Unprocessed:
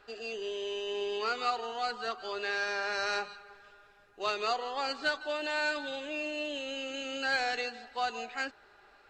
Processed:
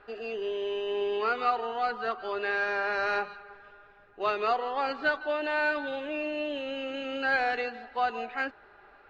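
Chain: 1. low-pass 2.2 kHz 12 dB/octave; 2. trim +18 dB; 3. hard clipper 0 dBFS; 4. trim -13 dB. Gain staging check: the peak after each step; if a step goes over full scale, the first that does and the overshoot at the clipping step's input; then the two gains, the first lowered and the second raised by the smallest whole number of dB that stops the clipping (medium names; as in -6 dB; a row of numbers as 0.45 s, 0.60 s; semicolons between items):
-20.0 dBFS, -2.0 dBFS, -2.0 dBFS, -15.0 dBFS; nothing clips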